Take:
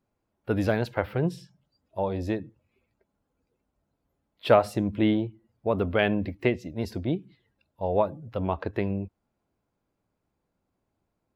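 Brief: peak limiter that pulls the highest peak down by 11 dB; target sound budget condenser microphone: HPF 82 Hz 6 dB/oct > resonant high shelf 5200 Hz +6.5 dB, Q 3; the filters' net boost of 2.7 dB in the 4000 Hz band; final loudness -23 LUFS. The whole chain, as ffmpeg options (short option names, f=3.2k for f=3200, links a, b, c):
-af "equalizer=f=4k:t=o:g=7.5,alimiter=limit=-14dB:level=0:latency=1,highpass=f=82:p=1,highshelf=f=5.2k:t=q:w=3:g=6.5,volume=7dB"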